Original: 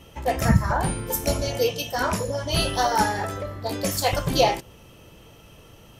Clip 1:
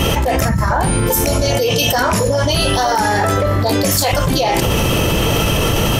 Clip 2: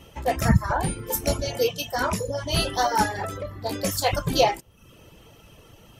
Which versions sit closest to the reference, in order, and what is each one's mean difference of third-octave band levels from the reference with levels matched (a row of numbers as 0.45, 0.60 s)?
2, 1; 2.5, 9.0 dB